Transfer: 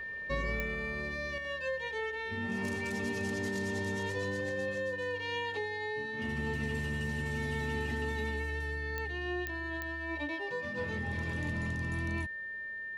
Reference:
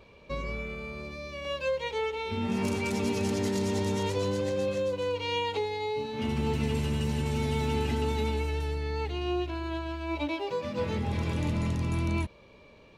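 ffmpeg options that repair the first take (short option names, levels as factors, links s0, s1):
-af "adeclick=t=4,bandreject=f=1800:w=30,asetnsamples=n=441:p=0,asendcmd='1.38 volume volume 7dB',volume=1"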